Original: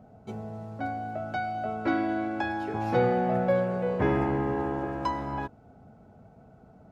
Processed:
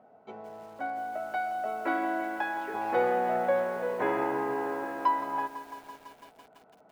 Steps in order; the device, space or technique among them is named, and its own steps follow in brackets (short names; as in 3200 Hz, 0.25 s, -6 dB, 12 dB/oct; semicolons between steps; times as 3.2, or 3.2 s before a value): tin-can telephone (BPF 440–2900 Hz; small resonant body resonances 990/1900 Hz, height 6 dB, ringing for 45 ms); lo-fi delay 0.167 s, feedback 80%, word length 8-bit, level -13 dB